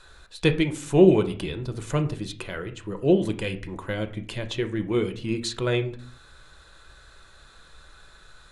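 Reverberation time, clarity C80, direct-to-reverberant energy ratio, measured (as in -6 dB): 0.50 s, 18.0 dB, 7.0 dB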